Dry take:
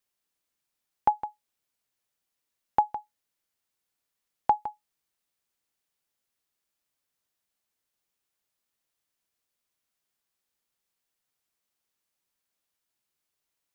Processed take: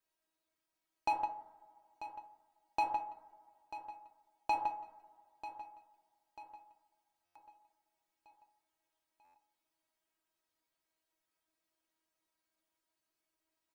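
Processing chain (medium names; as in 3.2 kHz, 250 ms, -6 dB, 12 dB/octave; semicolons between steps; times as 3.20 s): bass shelf 220 Hz -6 dB; two-slope reverb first 0.67 s, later 2.2 s, from -18 dB, DRR 8 dB; hard clipper -24.5 dBFS, distortion -5 dB; treble shelf 2.3 kHz -10.5 dB; feedback comb 320 Hz, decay 0.17 s, harmonics all, mix 90%; on a send: feedback delay 941 ms, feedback 48%, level -13 dB; on the sum: buffer glitch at 7.25/9.24 s, samples 512, times 8; trim +13.5 dB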